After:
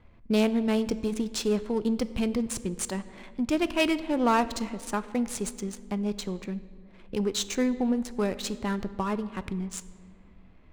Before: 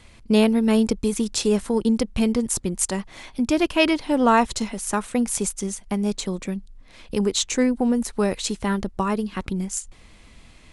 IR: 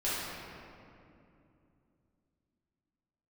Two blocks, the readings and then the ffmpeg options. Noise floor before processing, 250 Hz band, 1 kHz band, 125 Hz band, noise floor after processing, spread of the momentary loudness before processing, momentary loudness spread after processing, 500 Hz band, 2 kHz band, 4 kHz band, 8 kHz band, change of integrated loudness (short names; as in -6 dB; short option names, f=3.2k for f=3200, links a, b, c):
-50 dBFS, -6.0 dB, -6.0 dB, -6.0 dB, -53 dBFS, 10 LU, 10 LU, -6.0 dB, -6.0 dB, -6.0 dB, -9.5 dB, -6.0 dB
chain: -filter_complex "[0:a]aeval=exprs='0.596*(cos(1*acos(clip(val(0)/0.596,-1,1)))-cos(1*PI/2))+0.237*(cos(2*acos(clip(val(0)/0.596,-1,1)))-cos(2*PI/2))+0.237*(cos(4*acos(clip(val(0)/0.596,-1,1)))-cos(4*PI/2))+0.0299*(cos(5*acos(clip(val(0)/0.596,-1,1)))-cos(5*PI/2))+0.0944*(cos(6*acos(clip(val(0)/0.596,-1,1)))-cos(6*PI/2))':c=same,adynamicsmooth=sensitivity=7:basefreq=1.3k,asplit=2[a][b];[1:a]atrim=start_sample=2205,asetrate=74970,aresample=44100[c];[b][c]afir=irnorm=-1:irlink=0,volume=-17dB[d];[a][d]amix=inputs=2:normalize=0,volume=-8dB"